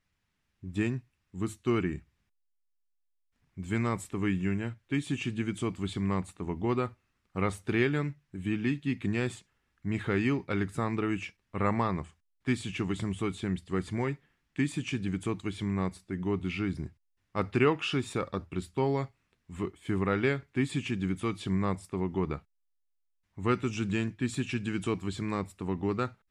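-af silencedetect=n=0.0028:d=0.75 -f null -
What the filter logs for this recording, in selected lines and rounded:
silence_start: 2.02
silence_end: 3.57 | silence_duration: 1.55
silence_start: 22.40
silence_end: 23.37 | silence_duration: 0.97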